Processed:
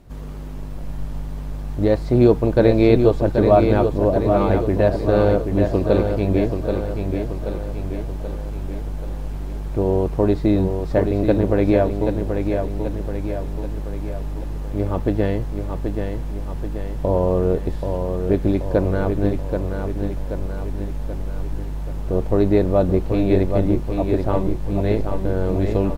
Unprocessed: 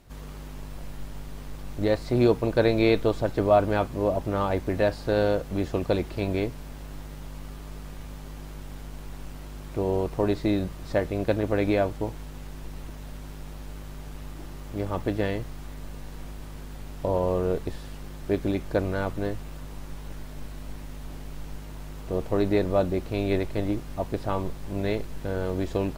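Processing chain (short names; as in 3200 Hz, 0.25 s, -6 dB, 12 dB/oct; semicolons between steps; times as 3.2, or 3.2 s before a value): tilt shelf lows +5 dB; feedback echo 0.781 s, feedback 53%, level -6 dB; gain +3 dB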